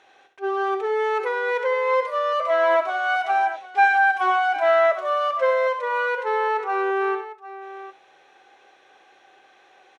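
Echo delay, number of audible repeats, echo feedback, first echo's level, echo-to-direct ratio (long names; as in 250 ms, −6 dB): 65 ms, 2, repeats not evenly spaced, −8.5 dB, −7.0 dB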